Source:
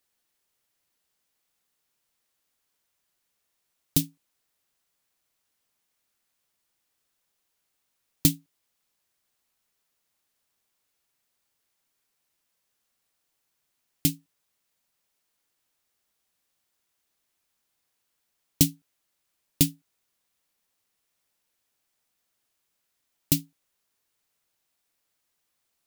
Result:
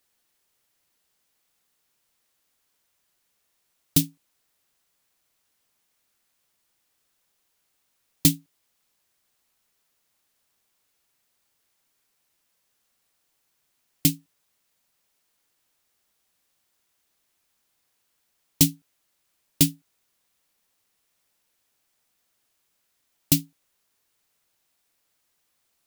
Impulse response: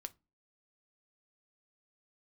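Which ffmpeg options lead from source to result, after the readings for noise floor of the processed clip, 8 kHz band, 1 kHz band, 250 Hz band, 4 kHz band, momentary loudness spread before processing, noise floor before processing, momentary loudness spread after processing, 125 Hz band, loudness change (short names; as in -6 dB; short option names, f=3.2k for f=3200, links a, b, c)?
-74 dBFS, +3.5 dB, +3.5 dB, +3.0 dB, +3.5 dB, 9 LU, -78 dBFS, 7 LU, +2.5 dB, +3.0 dB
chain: -af "apsyclip=12.5dB,volume=-8dB"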